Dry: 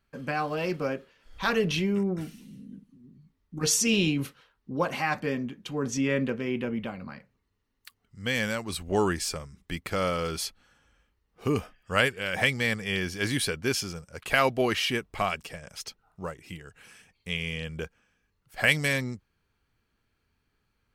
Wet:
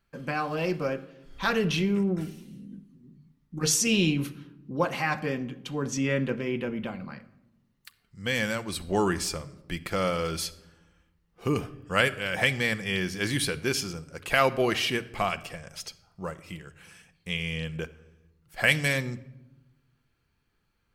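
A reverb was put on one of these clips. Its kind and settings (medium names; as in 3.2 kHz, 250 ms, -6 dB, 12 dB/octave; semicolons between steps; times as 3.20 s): simulated room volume 3900 m³, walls furnished, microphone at 0.81 m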